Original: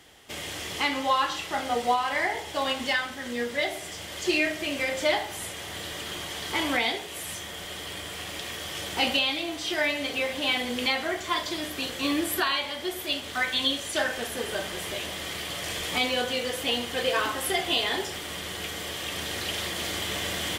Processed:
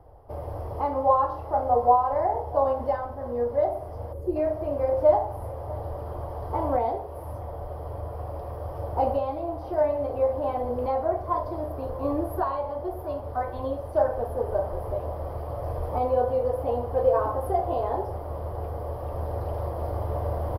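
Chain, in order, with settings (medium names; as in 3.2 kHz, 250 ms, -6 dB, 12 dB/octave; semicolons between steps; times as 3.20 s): FFT filter 120 Hz 0 dB, 180 Hz -14 dB, 370 Hz -4 dB, 540 Hz +8 dB, 1 kHz +7 dB, 1.9 kHz -17 dB, 3.5 kHz -24 dB, 5 kHz -11 dB, 7.3 kHz -30 dB, 11 kHz +3 dB; on a send: delay 642 ms -20.5 dB; on the sum: time-frequency box 4.13–4.36 s, 560–6500 Hz -13 dB; tilt EQ -4.5 dB/octave; trim -3 dB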